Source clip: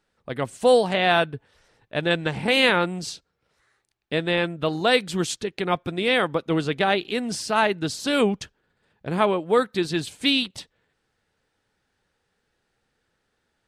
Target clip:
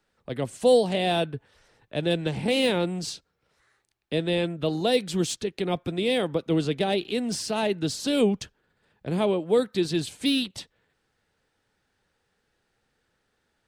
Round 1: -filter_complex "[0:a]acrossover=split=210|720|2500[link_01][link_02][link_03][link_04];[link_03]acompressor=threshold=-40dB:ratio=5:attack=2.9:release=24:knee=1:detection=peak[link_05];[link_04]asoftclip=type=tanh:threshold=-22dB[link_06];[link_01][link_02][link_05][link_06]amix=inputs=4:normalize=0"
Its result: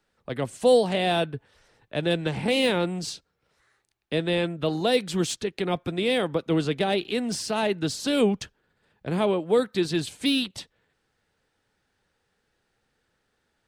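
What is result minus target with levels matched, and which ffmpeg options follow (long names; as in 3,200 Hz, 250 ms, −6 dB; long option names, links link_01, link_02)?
downward compressor: peak gain reduction −9 dB
-filter_complex "[0:a]acrossover=split=210|720|2500[link_01][link_02][link_03][link_04];[link_03]acompressor=threshold=-51dB:ratio=5:attack=2.9:release=24:knee=1:detection=peak[link_05];[link_04]asoftclip=type=tanh:threshold=-22dB[link_06];[link_01][link_02][link_05][link_06]amix=inputs=4:normalize=0"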